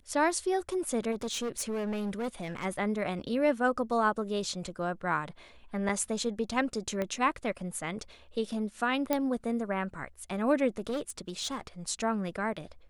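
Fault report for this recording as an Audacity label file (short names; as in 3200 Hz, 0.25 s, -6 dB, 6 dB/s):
1.110000	2.660000	clipped -29.5 dBFS
5.890000	5.890000	gap 2.7 ms
7.020000	7.020000	pop -19 dBFS
9.130000	9.130000	pop -13 dBFS
10.780000	11.670000	clipped -28.5 dBFS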